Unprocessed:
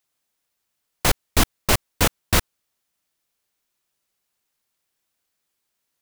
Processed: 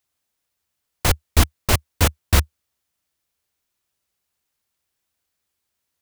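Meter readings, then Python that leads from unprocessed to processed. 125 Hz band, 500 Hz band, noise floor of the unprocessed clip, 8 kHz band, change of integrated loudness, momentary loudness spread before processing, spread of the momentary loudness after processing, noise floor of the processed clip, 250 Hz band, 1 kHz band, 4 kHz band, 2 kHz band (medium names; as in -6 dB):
+6.0 dB, -1.0 dB, -78 dBFS, -1.0 dB, +1.0 dB, 3 LU, 4 LU, -79 dBFS, -0.5 dB, -1.0 dB, -1.0 dB, -1.0 dB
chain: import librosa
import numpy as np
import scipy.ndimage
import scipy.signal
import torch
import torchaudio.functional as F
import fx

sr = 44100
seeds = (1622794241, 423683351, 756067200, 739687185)

y = fx.peak_eq(x, sr, hz=76.0, db=11.0, octaves=0.8)
y = y * 10.0 ** (-1.0 / 20.0)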